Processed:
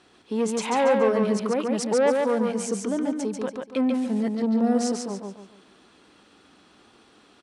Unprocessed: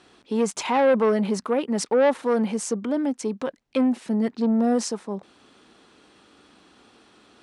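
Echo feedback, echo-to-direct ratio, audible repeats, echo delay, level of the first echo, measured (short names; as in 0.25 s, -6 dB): 34%, -3.0 dB, 4, 0.142 s, -3.5 dB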